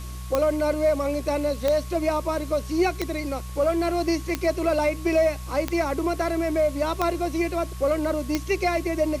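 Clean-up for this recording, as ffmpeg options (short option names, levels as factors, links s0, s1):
-af "adeclick=t=4,bandreject=f=61.8:t=h:w=4,bandreject=f=123.6:t=h:w=4,bandreject=f=185.4:t=h:w=4,bandreject=f=1100:w=30,afwtdn=0.0056"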